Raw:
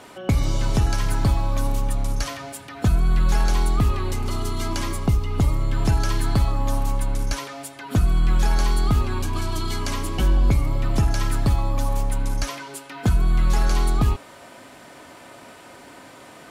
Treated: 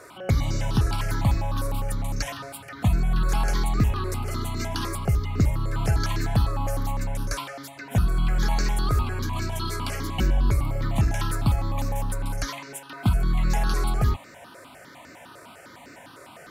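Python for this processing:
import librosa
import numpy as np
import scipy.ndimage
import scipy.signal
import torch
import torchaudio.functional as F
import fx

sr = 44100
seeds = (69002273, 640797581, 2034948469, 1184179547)

y = fx.highpass(x, sr, hz=70.0, slope=6)
y = fx.phaser_held(y, sr, hz=9.9, low_hz=830.0, high_hz=3200.0)
y = y * 10.0 ** (1.5 / 20.0)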